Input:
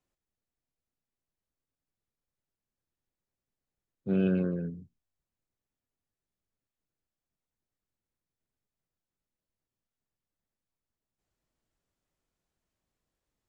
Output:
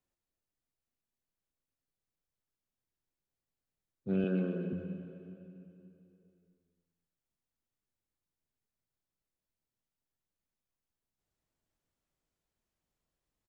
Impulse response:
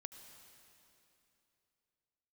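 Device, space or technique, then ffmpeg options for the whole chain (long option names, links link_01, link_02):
cave: -filter_complex "[0:a]aecho=1:1:251:0.266[link_01];[1:a]atrim=start_sample=2205[link_02];[link_01][link_02]afir=irnorm=-1:irlink=0,asettb=1/sr,asplit=3[link_03][link_04][link_05];[link_03]atrim=end=4.244[link_06];[link_04]atrim=start=4.24:end=4.73,asetpts=PTS-STARTPTS,afade=type=in:duration=0.004:curve=qsin,afade=type=out:start_time=0.486:duration=0.004:curve=qsin,highpass=frequency=170:width=0.5412,highpass=frequency=170:width=1.3066[link_07];[link_05]atrim=start=4.726[link_08];[link_06][link_07]acrossfade=duration=0.004:curve1=hsin:curve2=qsin[link_09];[link_09][link_08]acrossfade=duration=0.004:curve1=qsin:curve2=hsin,volume=2dB"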